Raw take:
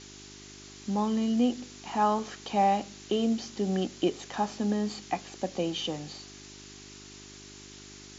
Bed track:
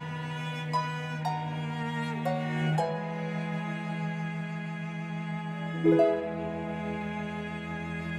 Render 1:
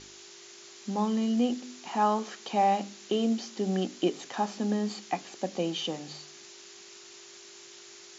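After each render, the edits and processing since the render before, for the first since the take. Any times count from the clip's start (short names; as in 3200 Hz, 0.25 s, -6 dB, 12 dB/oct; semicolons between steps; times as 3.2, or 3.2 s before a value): de-hum 50 Hz, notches 6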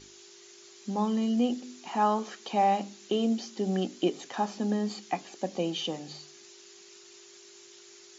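denoiser 6 dB, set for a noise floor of -50 dBFS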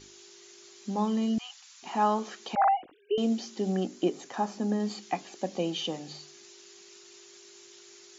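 1.38–1.83 steep high-pass 910 Hz 48 dB/oct; 2.55–3.18 sine-wave speech; 3.72–4.8 bell 3300 Hz -5.5 dB 1.2 oct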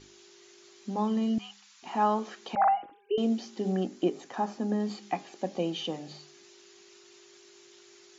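high shelf 5400 Hz -10 dB; de-hum 202.4 Hz, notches 13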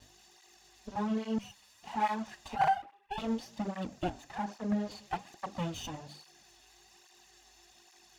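minimum comb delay 1.1 ms; tape flanging out of phase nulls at 1.2 Hz, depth 6.3 ms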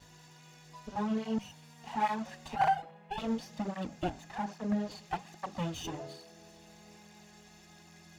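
add bed track -23 dB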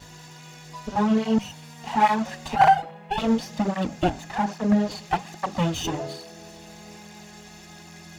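gain +11.5 dB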